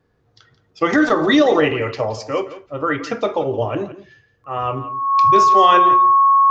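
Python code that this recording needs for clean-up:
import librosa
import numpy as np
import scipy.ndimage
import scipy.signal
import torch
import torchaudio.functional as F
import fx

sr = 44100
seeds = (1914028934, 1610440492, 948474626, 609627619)

y = fx.notch(x, sr, hz=1100.0, q=30.0)
y = fx.fix_echo_inverse(y, sr, delay_ms=171, level_db=-15.0)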